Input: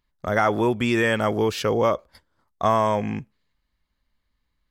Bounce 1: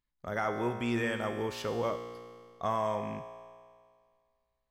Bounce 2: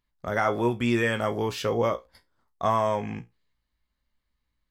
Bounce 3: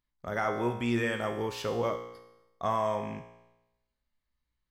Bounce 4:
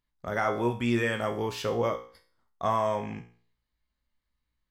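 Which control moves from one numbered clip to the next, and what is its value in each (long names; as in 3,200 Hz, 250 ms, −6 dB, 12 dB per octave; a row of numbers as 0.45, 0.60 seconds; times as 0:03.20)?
tuned comb filter, decay: 2, 0.19, 0.96, 0.44 seconds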